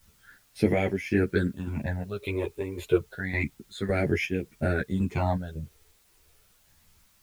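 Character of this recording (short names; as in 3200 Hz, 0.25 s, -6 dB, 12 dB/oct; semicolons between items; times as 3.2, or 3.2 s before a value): chopped level 1.8 Hz, depth 60%, duty 65%; phasing stages 8, 0.29 Hz, lowest notch 200–1200 Hz; a quantiser's noise floor 12-bit, dither triangular; a shimmering, thickened sound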